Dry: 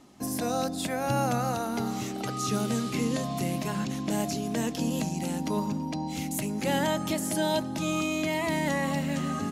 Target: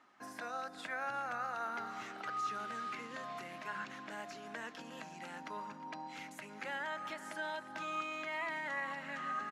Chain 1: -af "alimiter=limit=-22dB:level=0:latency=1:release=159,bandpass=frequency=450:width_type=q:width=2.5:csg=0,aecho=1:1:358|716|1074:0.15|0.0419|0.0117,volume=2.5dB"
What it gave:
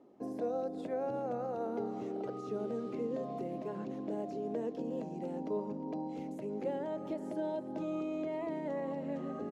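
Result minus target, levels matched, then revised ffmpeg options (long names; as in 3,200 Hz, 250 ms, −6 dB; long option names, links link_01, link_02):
2,000 Hz band −19.5 dB
-af "alimiter=limit=-22dB:level=0:latency=1:release=159,bandpass=frequency=1500:width_type=q:width=2.5:csg=0,aecho=1:1:358|716|1074:0.15|0.0419|0.0117,volume=2.5dB"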